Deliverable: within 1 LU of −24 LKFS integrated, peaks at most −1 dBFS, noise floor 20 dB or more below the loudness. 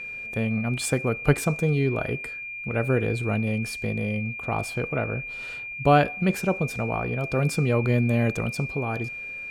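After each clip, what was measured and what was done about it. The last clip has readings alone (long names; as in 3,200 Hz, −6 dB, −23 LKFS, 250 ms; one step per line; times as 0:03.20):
crackle rate 20 per second; interfering tone 2,400 Hz; level of the tone −33 dBFS; integrated loudness −25.5 LKFS; sample peak −6.5 dBFS; target loudness −24.0 LKFS
→ click removal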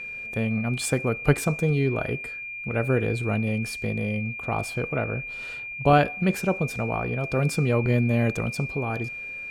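crackle rate 0.21 per second; interfering tone 2,400 Hz; level of the tone −33 dBFS
→ notch filter 2,400 Hz, Q 30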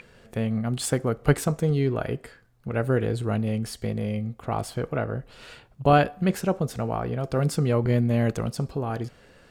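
interfering tone none found; integrated loudness −26.0 LKFS; sample peak −7.0 dBFS; target loudness −24.0 LKFS
→ level +2 dB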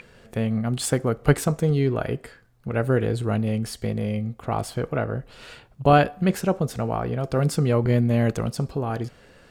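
integrated loudness −24.0 LKFS; sample peak −5.0 dBFS; background noise floor −53 dBFS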